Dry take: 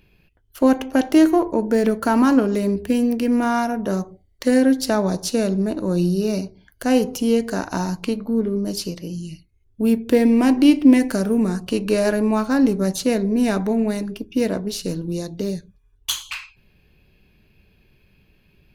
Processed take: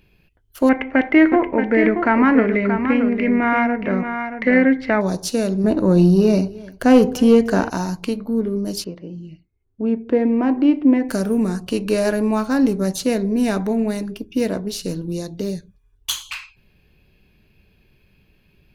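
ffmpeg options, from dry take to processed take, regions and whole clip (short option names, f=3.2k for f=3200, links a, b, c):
-filter_complex "[0:a]asettb=1/sr,asplit=3[a][b][c];[a]atrim=end=0.694[d];[b]atrim=start=0.69:end=5.01,asetpts=PTS-STARTPTS,afade=t=in:d=0.004:c=qsin,afade=t=out:st=4.316:d=0.004:c=qsin,lowpass=f=2.1k:t=q:w=9.4,aemphasis=mode=reproduction:type=cd,aecho=1:1:627:0.422,atrim=end_sample=190512[e];[c]atrim=start=5.006[f];[d][e]acrossfade=d=0.004:c1=hsin:c2=qsin[g];[g][f]acrossfade=d=0.004:c1=qsin:c2=hsin,asettb=1/sr,asplit=3[h][i][j];[h]atrim=end=5.644[k];[i]atrim=start=5.64:end=7.7,asetpts=PTS-STARTPTS,afade=t=in:d=0.004:c=qsin,afade=t=out:st=2.056:d=0.004:c=qsin,highshelf=f=4.1k:g=-11.5,aecho=1:1:305:0.0841,atrim=end_sample=90846,acontrast=88[l];[j]atrim=start=7.696[m];[k][l]acrossfade=d=0.004:c1=hsin:c2=qsin[n];[n][m]acrossfade=d=0.004:c1=qsin:c2=hsin,asettb=1/sr,asplit=3[o][p][q];[o]atrim=end=8.844[r];[p]atrim=start=8.84:end=11.09,asetpts=PTS-STARTPTS,afade=t=in:d=0.004:c=qsin,afade=t=out:st=2.246:d=0.004:c=qsin,lowpass=1.6k,lowshelf=f=130:g=-11[s];[q]atrim=start=11.086[t];[r][s]acrossfade=d=0.004:c1=hsin:c2=qsin[u];[u][t]acrossfade=d=0.004:c1=qsin:c2=hsin"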